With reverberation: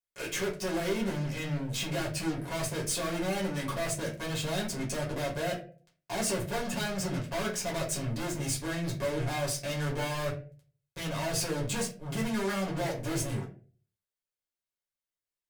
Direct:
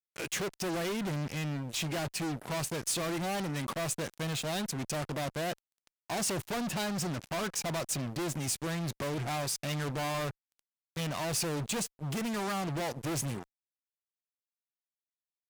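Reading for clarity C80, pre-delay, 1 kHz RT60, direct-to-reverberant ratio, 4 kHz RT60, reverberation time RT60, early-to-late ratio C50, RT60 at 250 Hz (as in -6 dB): 14.0 dB, 4 ms, 0.35 s, -4.0 dB, 0.25 s, 0.40 s, 9.5 dB, 0.50 s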